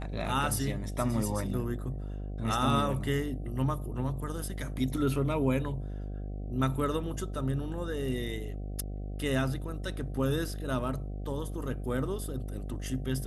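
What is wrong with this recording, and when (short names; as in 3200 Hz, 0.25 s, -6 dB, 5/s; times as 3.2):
buzz 50 Hz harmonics 15 -37 dBFS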